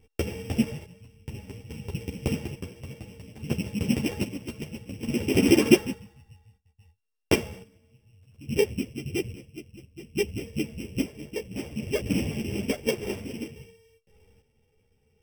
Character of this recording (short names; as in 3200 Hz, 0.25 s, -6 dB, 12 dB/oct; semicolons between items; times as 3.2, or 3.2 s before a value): a buzz of ramps at a fixed pitch in blocks of 16 samples; chopped level 0.59 Hz, depth 60%, duty 50%; a shimmering, thickened sound